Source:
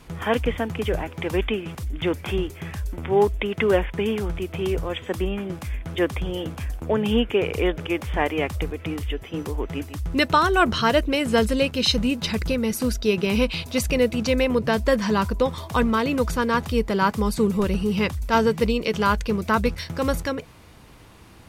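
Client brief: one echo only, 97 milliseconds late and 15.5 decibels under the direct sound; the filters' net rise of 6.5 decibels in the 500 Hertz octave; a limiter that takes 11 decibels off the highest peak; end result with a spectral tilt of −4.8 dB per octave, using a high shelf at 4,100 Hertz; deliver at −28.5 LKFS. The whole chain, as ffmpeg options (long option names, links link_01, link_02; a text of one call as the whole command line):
ffmpeg -i in.wav -af "equalizer=frequency=500:width_type=o:gain=7.5,highshelf=frequency=4100:gain=8.5,alimiter=limit=-13dB:level=0:latency=1,aecho=1:1:97:0.168,volume=-5dB" out.wav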